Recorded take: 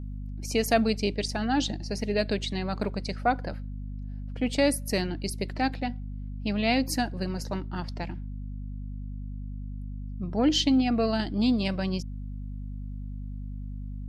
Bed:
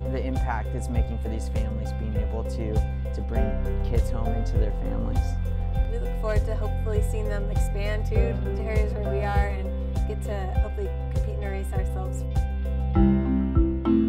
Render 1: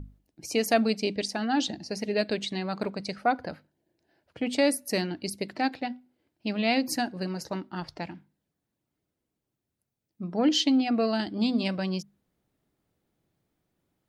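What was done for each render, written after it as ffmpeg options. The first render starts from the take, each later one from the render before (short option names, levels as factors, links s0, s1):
-af "bandreject=f=50:t=h:w=6,bandreject=f=100:t=h:w=6,bandreject=f=150:t=h:w=6,bandreject=f=200:t=h:w=6,bandreject=f=250:t=h:w=6"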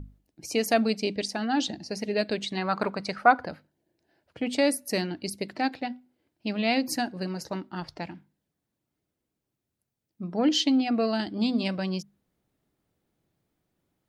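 -filter_complex "[0:a]asettb=1/sr,asplit=3[s0][s1][s2];[s0]atrim=end=2.574[s3];[s1]atrim=start=2.57:end=3.45,asetpts=PTS-STARTPTS,afade=t=in:d=0.004:c=qsin,afade=t=out:st=0.876:d=0.004:c=qsin,equalizer=f=1200:t=o:w=1.5:g=10.5[s4];[s2]atrim=start=3.446[s5];[s3][s4]acrossfade=d=0.004:c1=hsin:c2=qsin[s6];[s6][s5]acrossfade=d=0.004:c1=qsin:c2=hsin"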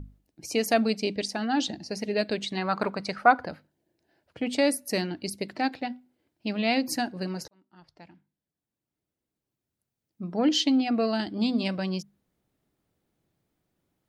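-filter_complex "[0:a]asplit=2[s0][s1];[s0]atrim=end=7.48,asetpts=PTS-STARTPTS,afade=t=out:st=7.476:d=0.004:c=hsin[s2];[s1]atrim=start=7.48,asetpts=PTS-STARTPTS,afade=t=in:d=2.81[s3];[s2][s3]concat=n=2:v=0:a=1"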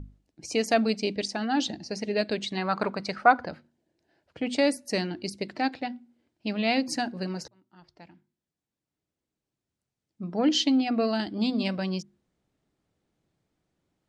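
-af "lowpass=f=8600:w=0.5412,lowpass=f=8600:w=1.3066,bandreject=f=118.6:t=h:w=4,bandreject=f=237.2:t=h:w=4,bandreject=f=355.8:t=h:w=4"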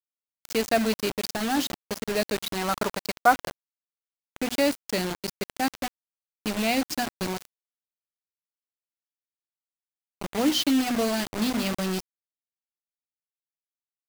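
-af "acrusher=bits=4:mix=0:aa=0.000001"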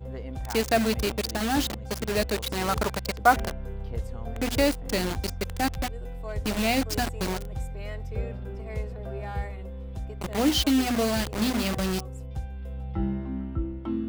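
-filter_complex "[1:a]volume=0.355[s0];[0:a][s0]amix=inputs=2:normalize=0"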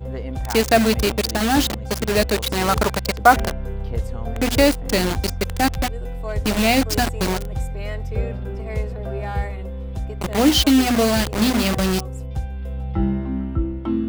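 -af "volume=2.37,alimiter=limit=0.891:level=0:latency=1"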